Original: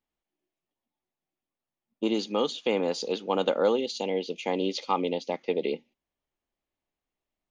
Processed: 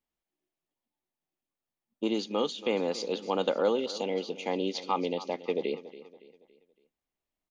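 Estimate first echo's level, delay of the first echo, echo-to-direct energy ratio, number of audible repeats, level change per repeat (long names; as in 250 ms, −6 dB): −16.0 dB, 281 ms, −15.0 dB, 3, −7.5 dB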